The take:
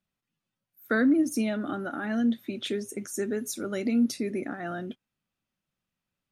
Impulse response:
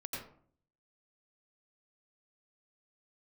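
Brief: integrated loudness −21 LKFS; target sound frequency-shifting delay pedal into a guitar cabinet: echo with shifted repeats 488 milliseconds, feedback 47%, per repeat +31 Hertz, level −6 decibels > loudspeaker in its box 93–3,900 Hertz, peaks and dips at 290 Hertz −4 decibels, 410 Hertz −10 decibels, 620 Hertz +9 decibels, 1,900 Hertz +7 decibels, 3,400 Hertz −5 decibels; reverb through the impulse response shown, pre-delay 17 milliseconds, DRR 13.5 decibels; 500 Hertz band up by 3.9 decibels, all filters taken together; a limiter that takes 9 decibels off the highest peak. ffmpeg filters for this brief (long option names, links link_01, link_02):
-filter_complex "[0:a]equalizer=frequency=500:width_type=o:gain=5.5,alimiter=limit=-21.5dB:level=0:latency=1,asplit=2[link_01][link_02];[1:a]atrim=start_sample=2205,adelay=17[link_03];[link_02][link_03]afir=irnorm=-1:irlink=0,volume=-14dB[link_04];[link_01][link_04]amix=inputs=2:normalize=0,asplit=7[link_05][link_06][link_07][link_08][link_09][link_10][link_11];[link_06]adelay=488,afreqshift=31,volume=-6dB[link_12];[link_07]adelay=976,afreqshift=62,volume=-12.6dB[link_13];[link_08]adelay=1464,afreqshift=93,volume=-19.1dB[link_14];[link_09]adelay=1952,afreqshift=124,volume=-25.7dB[link_15];[link_10]adelay=2440,afreqshift=155,volume=-32.2dB[link_16];[link_11]adelay=2928,afreqshift=186,volume=-38.8dB[link_17];[link_05][link_12][link_13][link_14][link_15][link_16][link_17]amix=inputs=7:normalize=0,highpass=93,equalizer=frequency=290:width_type=q:width=4:gain=-4,equalizer=frequency=410:width_type=q:width=4:gain=-10,equalizer=frequency=620:width_type=q:width=4:gain=9,equalizer=frequency=1900:width_type=q:width=4:gain=7,equalizer=frequency=3400:width_type=q:width=4:gain=-5,lowpass=frequency=3900:width=0.5412,lowpass=frequency=3900:width=1.3066,volume=9.5dB"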